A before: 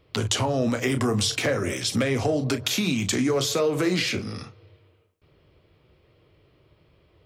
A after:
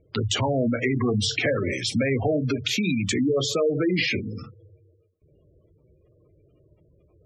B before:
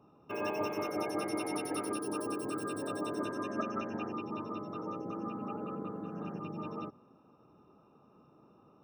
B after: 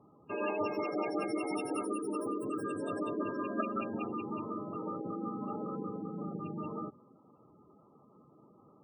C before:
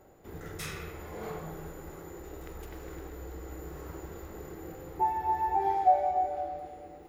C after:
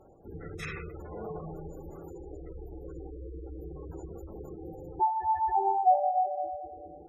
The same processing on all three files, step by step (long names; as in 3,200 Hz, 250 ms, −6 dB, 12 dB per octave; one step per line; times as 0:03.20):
dynamic equaliser 2,200 Hz, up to +4 dB, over −46 dBFS, Q 1.7
in parallel at −4 dB: gain into a clipping stage and back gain 19.5 dB
on the sum: gate on every frequency bin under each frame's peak −15 dB strong
high-shelf EQ 7,700 Hz −6.5 dB
level −3 dB